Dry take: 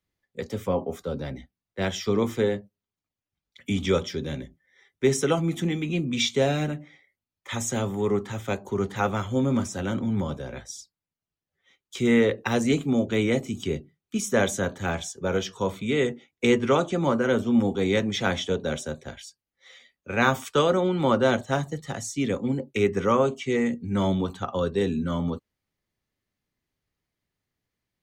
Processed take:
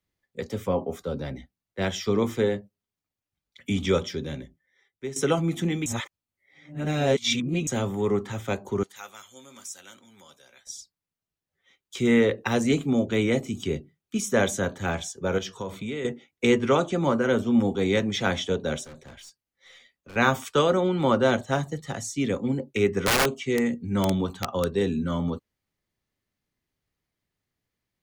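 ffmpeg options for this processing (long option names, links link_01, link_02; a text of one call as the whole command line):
ffmpeg -i in.wav -filter_complex "[0:a]asettb=1/sr,asplit=3[link_01][link_02][link_03];[link_01]atrim=end=8.834[link_04];[link_02]atrim=start=8.83:end=10.67,asetpts=PTS-STARTPTS,afade=type=in:duration=0.004:curve=qsin,afade=type=out:start_time=1.836:duration=0.004:curve=qsin,aderivative[link_05];[link_03]atrim=start=10.666[link_06];[link_04][link_05]acrossfade=duration=0.004:curve1=hsin:curve2=qsin[link_07];[link_07][link_06]acrossfade=duration=0.004:curve1=qsin:curve2=hsin,asettb=1/sr,asplit=3[link_08][link_09][link_10];[link_08]atrim=end=15.384[link_11];[link_09]atrim=start=15.38:end=16.05,asetpts=PTS-STARTPTS,afade=type=in:duration=0.004:curve=qsin,afade=type=out:start_time=0.666:duration=0.004:curve=qsin,acompressor=threshold=-29dB:ratio=4:attack=3.2:release=140:knee=1:detection=peak[link_12];[link_10]atrim=start=16.046[link_13];[link_11][link_12]acrossfade=duration=0.004:curve1=hsin:curve2=qsin[link_14];[link_14][link_13]acrossfade=duration=0.004:curve1=qsin:curve2=hsin,asettb=1/sr,asplit=3[link_15][link_16][link_17];[link_15]atrim=end=18.844[link_18];[link_16]atrim=start=18.84:end=20.16,asetpts=PTS-STARTPTS,afade=type=in:duration=0.004:curve=qsin,afade=type=out:start_time=1.316:duration=0.004:curve=qsin,aeval=exprs='(tanh(126*val(0)+0.25)-tanh(0.25))/126':channel_layout=same[link_19];[link_17]atrim=start=20.156[link_20];[link_18][link_19]acrossfade=duration=0.004:curve1=hsin:curve2=qsin[link_21];[link_21][link_20]acrossfade=duration=0.004:curve1=qsin:curve2=hsin,asettb=1/sr,asplit=3[link_22][link_23][link_24];[link_22]atrim=end=23.014[link_25];[link_23]atrim=start=23.01:end=24.65,asetpts=PTS-STARTPTS,afade=type=in:duration=0.004:curve=qsin,afade=type=out:start_time=1.636:duration=0.004:curve=qsin,aeval=exprs='(mod(5.96*val(0)+1,2)-1)/5.96':channel_layout=same[link_26];[link_24]atrim=start=24.646[link_27];[link_25][link_26]acrossfade=duration=0.004:curve1=hsin:curve2=qsin[link_28];[link_28][link_27]acrossfade=duration=0.004:curve1=qsin:curve2=hsin,asplit=4[link_29][link_30][link_31][link_32];[link_29]atrim=end=5.16,asetpts=PTS-STARTPTS,afade=type=out:start_time=4.05:duration=1.11:silence=0.16788[link_33];[link_30]atrim=start=5.16:end=5.862,asetpts=PTS-STARTPTS,afade=type=in:duration=0.004:curve=hsin:silence=0.16788[link_34];[link_31]atrim=start=5.858:end=7.672,asetpts=PTS-STARTPTS,areverse[link_35];[link_32]atrim=start=7.668[link_36];[link_33][link_34]concat=n=2:v=0:a=1[link_37];[link_37][link_35]acrossfade=duration=0.004:curve1=hsin:curve2=hsin[link_38];[link_38][link_36]acrossfade=duration=0.004:curve1=hsin:curve2=hsin" out.wav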